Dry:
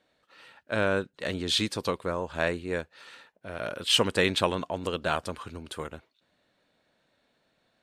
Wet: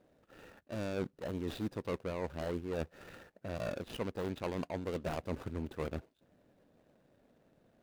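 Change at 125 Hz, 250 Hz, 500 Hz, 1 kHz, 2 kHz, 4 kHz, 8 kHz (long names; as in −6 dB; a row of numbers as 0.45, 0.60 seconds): −4.5, −6.0, −8.5, −12.0, −16.5, −23.0, −19.5 decibels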